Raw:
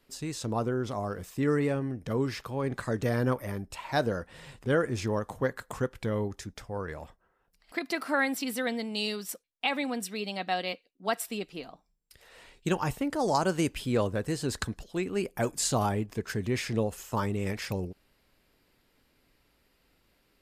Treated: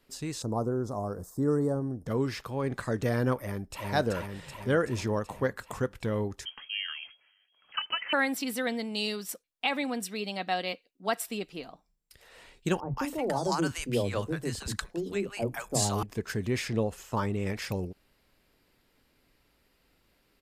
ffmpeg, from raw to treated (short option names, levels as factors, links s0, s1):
-filter_complex "[0:a]asettb=1/sr,asplit=3[s0][s1][s2];[s0]atrim=end=0.424[s3];[s1]atrim=start=0.42:end=2.07,asetpts=PTS-STARTPTS,afade=t=in:d=0.004:c=qsin,afade=t=out:st=1.646:d=0.004:c=qsin,asuperstop=centerf=2600:order=4:qfactor=0.55[s4];[s2]atrim=start=2.066[s5];[s3][s4]acrossfade=d=0.004:c1=hsin:c2=qsin[s6];[s6][s5]acrossfade=d=0.004:c1=qsin:c2=hsin,asplit=2[s7][s8];[s8]afade=t=in:st=3.37:d=0.01,afade=t=out:st=3.88:d=0.01,aecho=0:1:380|760|1140|1520|1900|2280|2660|3040|3420|3800|4180:0.841395|0.546907|0.355489|0.231068|0.150194|0.0976263|0.0634571|0.0412471|0.0268106|0.0174269|0.0113275[s9];[s7][s9]amix=inputs=2:normalize=0,asettb=1/sr,asplit=3[s10][s11][s12];[s10]atrim=end=6.454[s13];[s11]atrim=start=6.45:end=8.13,asetpts=PTS-STARTPTS,afade=t=in:d=0.004:c=qsin,afade=t=out:st=1.676:d=0.004:c=qsin,lowpass=f=2800:t=q:w=0.5098,lowpass=f=2800:t=q:w=0.6013,lowpass=f=2800:t=q:w=0.9,lowpass=f=2800:t=q:w=2.563,afreqshift=-3300[s14];[s12]atrim=start=8.126[s15];[s13][s14]acrossfade=d=0.004:c1=hsin:c2=qsin[s16];[s16][s15]acrossfade=d=0.004:c1=qsin:c2=hsin,asettb=1/sr,asplit=3[s17][s18][s19];[s17]atrim=end=12.804[s20];[s18]atrim=start=12.8:end=16.03,asetpts=PTS-STARTPTS,afade=t=in:d=0.004:c=qsin,afade=t=out:st=3.226:d=0.004:c=qsin,acrossover=split=220|810[s21][s22][s23];[s21]adelay=30[s24];[s23]adelay=170[s25];[s24][s22][s25]amix=inputs=3:normalize=0,atrim=end_sample=142443[s26];[s19]atrim=start=16.026[s27];[s20][s26]acrossfade=d=0.004:c1=hsin:c2=qsin[s28];[s28][s27]acrossfade=d=0.004:c1=qsin:c2=hsin,asettb=1/sr,asplit=3[s29][s30][s31];[s29]atrim=end=16.684[s32];[s30]atrim=start=16.68:end=17.56,asetpts=PTS-STARTPTS,afade=t=in:d=0.004:c=qsin,afade=t=out:st=0.876:d=0.004:c=qsin,highshelf=f=8400:g=-9[s33];[s31]atrim=start=17.556[s34];[s32][s33]acrossfade=d=0.004:c1=hsin:c2=qsin[s35];[s35][s34]acrossfade=d=0.004:c1=qsin:c2=hsin"